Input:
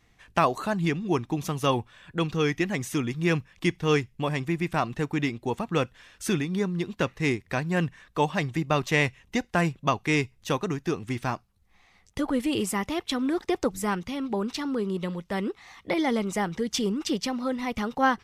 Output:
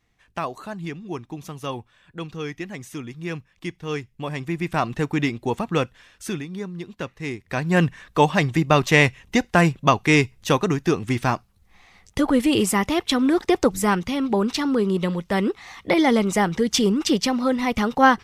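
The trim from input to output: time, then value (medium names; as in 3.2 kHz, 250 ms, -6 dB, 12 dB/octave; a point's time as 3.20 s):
3.86 s -6 dB
4.89 s +4.5 dB
5.68 s +4.5 dB
6.50 s -4.5 dB
7.31 s -4.5 dB
7.75 s +7.5 dB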